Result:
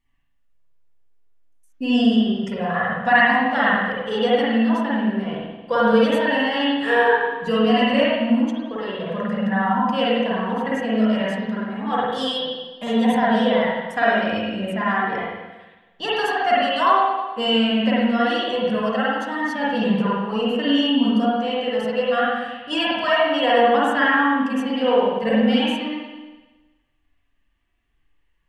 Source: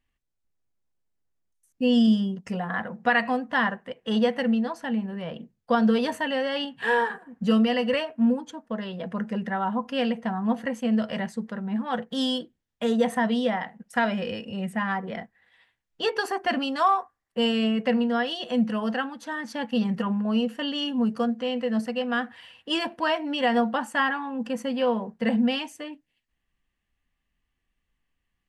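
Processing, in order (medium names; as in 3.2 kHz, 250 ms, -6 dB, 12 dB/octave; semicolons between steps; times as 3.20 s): hum notches 60/120/180/240 Hz; flange 0.31 Hz, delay 0.9 ms, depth 2.5 ms, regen -24%; spring tank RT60 1.2 s, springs 46/53 ms, chirp 60 ms, DRR -7 dB; trim +3.5 dB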